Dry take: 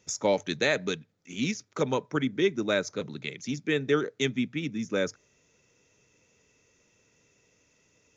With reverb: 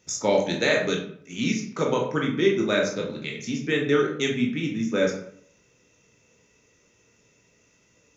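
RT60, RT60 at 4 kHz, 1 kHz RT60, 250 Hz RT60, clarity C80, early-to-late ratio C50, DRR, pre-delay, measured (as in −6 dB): 0.60 s, 0.40 s, 0.60 s, 0.65 s, 10.0 dB, 6.0 dB, −0.5 dB, 15 ms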